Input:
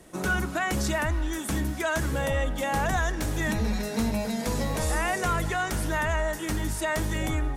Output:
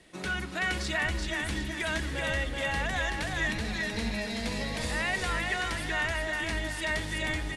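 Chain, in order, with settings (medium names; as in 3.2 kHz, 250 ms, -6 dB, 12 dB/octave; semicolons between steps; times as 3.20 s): steep low-pass 11 kHz 36 dB/octave; high-order bell 2.9 kHz +9.5 dB; on a send: feedback delay 379 ms, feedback 40%, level -3.5 dB; on the sum: trim -8 dB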